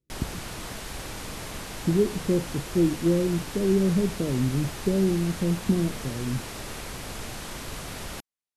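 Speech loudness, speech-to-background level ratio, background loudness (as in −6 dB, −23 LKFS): −26.0 LKFS, 10.5 dB, −36.5 LKFS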